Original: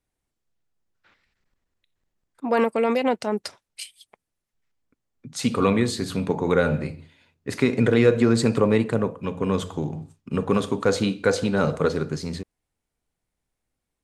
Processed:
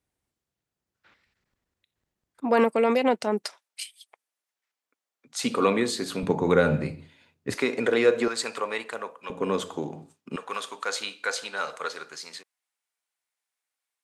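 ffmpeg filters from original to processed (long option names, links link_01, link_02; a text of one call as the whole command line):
ffmpeg -i in.wav -af "asetnsamples=nb_out_samples=441:pad=0,asendcmd='2.7 highpass f 180;3.46 highpass f 660;5.43 highpass f 290;6.23 highpass f 100;7.54 highpass f 410;8.28 highpass f 910;9.3 highpass f 290;10.36 highpass f 1100',highpass=52" out.wav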